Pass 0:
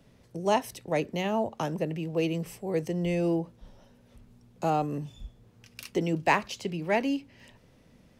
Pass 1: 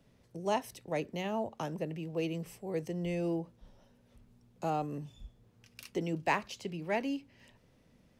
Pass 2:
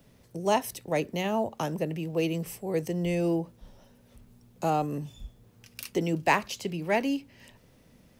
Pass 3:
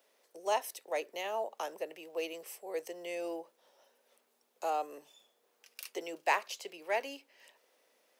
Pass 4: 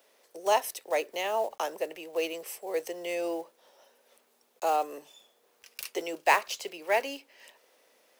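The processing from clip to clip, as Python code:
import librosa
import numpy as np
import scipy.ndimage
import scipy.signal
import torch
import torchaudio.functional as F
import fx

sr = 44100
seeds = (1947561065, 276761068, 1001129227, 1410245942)

y1 = fx.quant_float(x, sr, bits=8)
y1 = F.gain(torch.from_numpy(y1), -6.5).numpy()
y2 = fx.high_shelf(y1, sr, hz=10000.0, db=11.5)
y2 = F.gain(torch.from_numpy(y2), 6.5).numpy()
y3 = scipy.signal.sosfilt(scipy.signal.butter(4, 450.0, 'highpass', fs=sr, output='sos'), y2)
y3 = F.gain(torch.from_numpy(y3), -5.5).numpy()
y4 = fx.block_float(y3, sr, bits=5)
y4 = F.gain(torch.from_numpy(y4), 6.5).numpy()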